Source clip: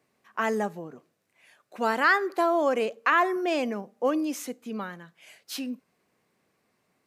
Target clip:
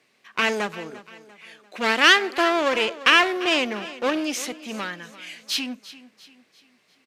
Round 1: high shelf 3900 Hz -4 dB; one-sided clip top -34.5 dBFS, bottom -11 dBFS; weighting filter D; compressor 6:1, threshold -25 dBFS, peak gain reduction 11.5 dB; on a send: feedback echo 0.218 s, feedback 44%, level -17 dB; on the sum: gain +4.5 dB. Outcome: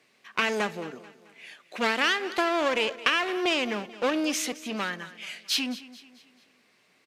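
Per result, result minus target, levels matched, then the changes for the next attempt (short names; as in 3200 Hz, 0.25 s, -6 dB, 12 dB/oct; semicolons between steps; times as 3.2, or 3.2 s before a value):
compressor: peak gain reduction +11.5 dB; echo 0.127 s early
remove: compressor 6:1, threshold -25 dBFS, peak gain reduction 11.5 dB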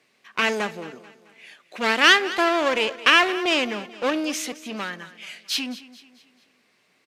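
echo 0.127 s early
change: feedback echo 0.345 s, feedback 44%, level -17 dB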